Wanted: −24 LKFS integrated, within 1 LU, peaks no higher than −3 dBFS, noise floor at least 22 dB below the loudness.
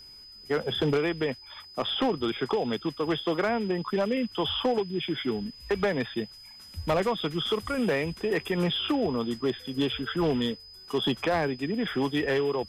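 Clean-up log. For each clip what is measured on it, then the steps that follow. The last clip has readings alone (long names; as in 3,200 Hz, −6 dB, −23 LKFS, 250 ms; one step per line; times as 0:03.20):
share of clipped samples 1.3%; peaks flattened at −19.5 dBFS; interfering tone 5,000 Hz; level of the tone −46 dBFS; integrated loudness −28.5 LKFS; sample peak −19.5 dBFS; target loudness −24.0 LKFS
→ clipped peaks rebuilt −19.5 dBFS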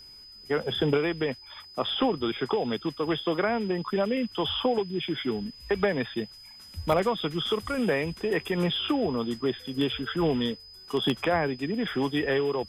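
share of clipped samples 0.0%; interfering tone 5,000 Hz; level of the tone −46 dBFS
→ notch filter 5,000 Hz, Q 30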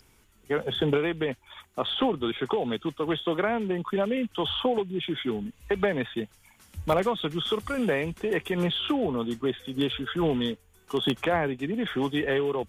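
interfering tone none found; integrated loudness −28.0 LKFS; sample peak −10.5 dBFS; target loudness −24.0 LKFS
→ level +4 dB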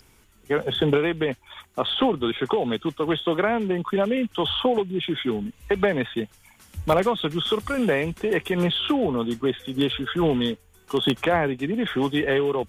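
integrated loudness −24.0 LKFS; sample peak −6.5 dBFS; background noise floor −57 dBFS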